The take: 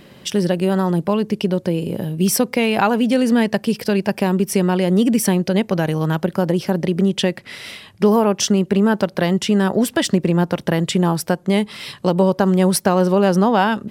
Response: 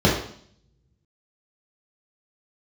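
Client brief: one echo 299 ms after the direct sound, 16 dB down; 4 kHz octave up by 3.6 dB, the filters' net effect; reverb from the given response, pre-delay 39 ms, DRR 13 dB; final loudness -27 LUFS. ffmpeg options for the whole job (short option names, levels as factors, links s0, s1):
-filter_complex "[0:a]equalizer=f=4000:t=o:g=5,aecho=1:1:299:0.158,asplit=2[s0][s1];[1:a]atrim=start_sample=2205,adelay=39[s2];[s1][s2]afir=irnorm=-1:irlink=0,volume=0.0211[s3];[s0][s3]amix=inputs=2:normalize=0,volume=0.299"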